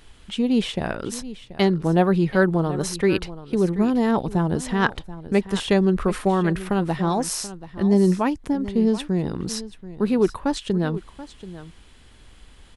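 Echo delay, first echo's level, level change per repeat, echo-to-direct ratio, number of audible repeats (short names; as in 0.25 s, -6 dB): 0.732 s, -15.5 dB, no steady repeat, -15.5 dB, 1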